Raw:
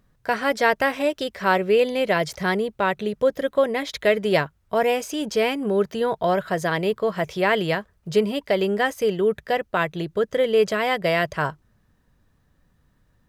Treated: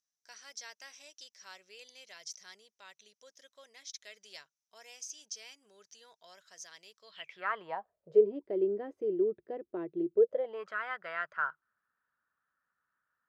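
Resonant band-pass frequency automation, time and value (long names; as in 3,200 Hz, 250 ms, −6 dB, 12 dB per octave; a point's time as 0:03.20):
resonant band-pass, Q 8
0:07.00 5,900 Hz
0:07.43 1,400 Hz
0:08.35 350 Hz
0:10.13 350 Hz
0:10.71 1,400 Hz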